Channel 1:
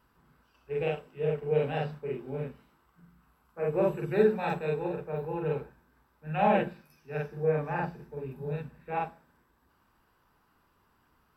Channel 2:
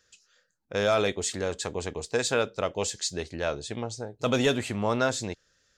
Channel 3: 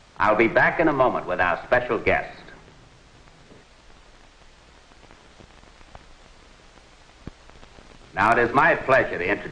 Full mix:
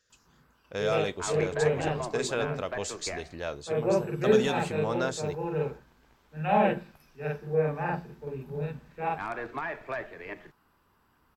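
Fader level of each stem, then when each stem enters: +1.0, −5.5, −17.0 decibels; 0.10, 0.00, 1.00 seconds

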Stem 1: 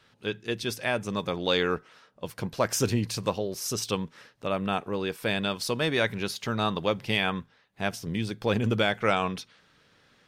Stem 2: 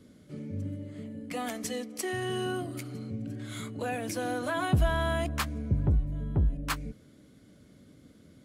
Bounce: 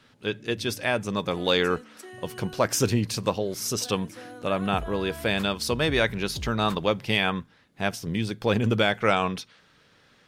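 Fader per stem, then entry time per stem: +2.5, −11.0 decibels; 0.00, 0.00 seconds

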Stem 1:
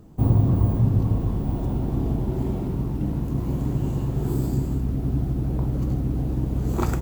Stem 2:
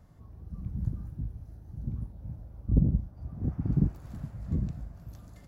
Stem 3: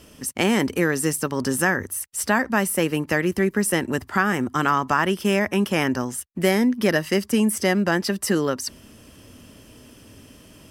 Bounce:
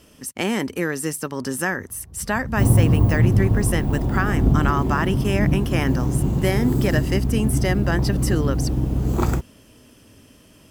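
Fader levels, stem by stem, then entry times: +3.0, +2.5, −3.0 decibels; 2.40, 1.70, 0.00 seconds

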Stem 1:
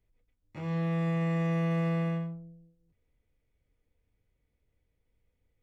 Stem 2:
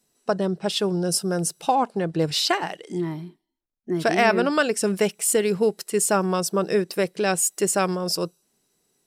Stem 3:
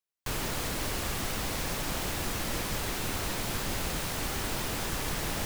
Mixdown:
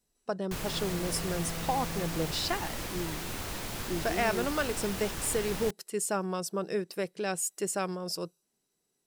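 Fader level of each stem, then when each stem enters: −12.0, −10.0, −4.5 decibels; 0.00, 0.00, 0.25 seconds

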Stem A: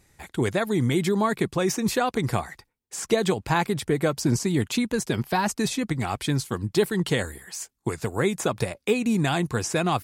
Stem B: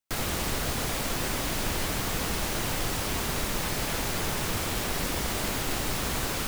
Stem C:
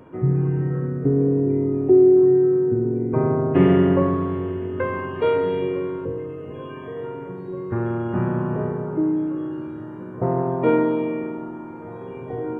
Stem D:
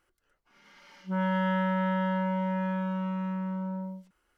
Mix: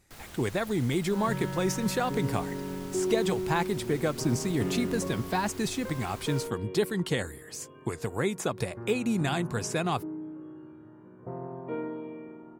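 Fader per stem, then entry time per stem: −5.0, −17.5, −16.5, −11.0 decibels; 0.00, 0.00, 1.05, 0.00 seconds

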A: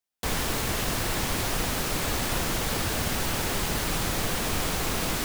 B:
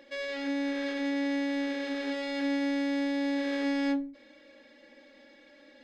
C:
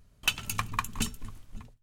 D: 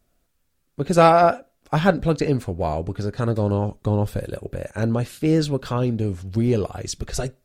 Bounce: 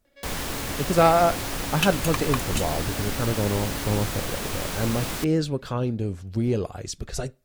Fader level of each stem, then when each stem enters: −2.5, −11.5, +1.5, −4.0 decibels; 0.00, 0.05, 1.55, 0.00 seconds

